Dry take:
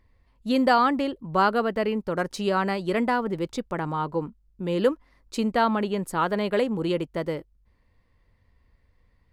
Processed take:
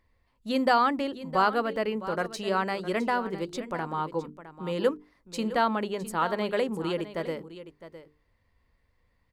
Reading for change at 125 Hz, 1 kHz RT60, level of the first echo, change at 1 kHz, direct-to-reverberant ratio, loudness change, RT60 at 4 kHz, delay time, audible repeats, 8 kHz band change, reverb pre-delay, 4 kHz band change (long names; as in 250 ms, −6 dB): −6.0 dB, no reverb audible, −14.0 dB, −2.0 dB, no reverb audible, −3.0 dB, no reverb audible, 660 ms, 1, −2.0 dB, no reverb audible, −2.0 dB